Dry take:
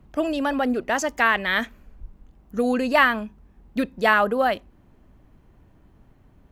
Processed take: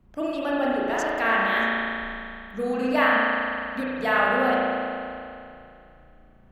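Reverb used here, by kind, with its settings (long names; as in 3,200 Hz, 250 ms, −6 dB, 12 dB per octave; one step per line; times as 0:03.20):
spring reverb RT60 2.6 s, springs 35 ms, chirp 65 ms, DRR −6.5 dB
level −8 dB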